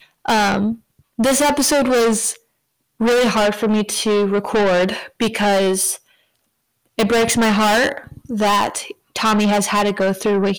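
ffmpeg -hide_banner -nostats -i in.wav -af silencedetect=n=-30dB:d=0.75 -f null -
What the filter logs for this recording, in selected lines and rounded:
silence_start: 5.96
silence_end: 6.98 | silence_duration: 1.02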